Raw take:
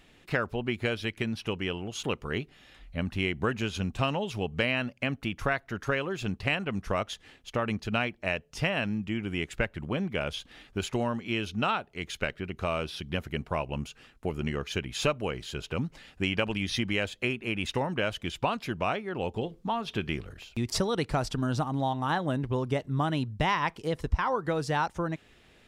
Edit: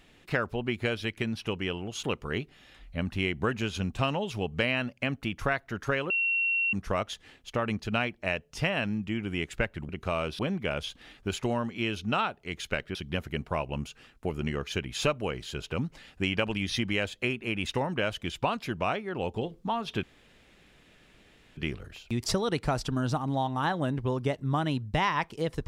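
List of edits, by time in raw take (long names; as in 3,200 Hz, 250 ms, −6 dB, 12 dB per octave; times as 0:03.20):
0:06.10–0:06.73: beep over 2,730 Hz −24 dBFS
0:12.45–0:12.95: move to 0:09.89
0:20.03: splice in room tone 1.54 s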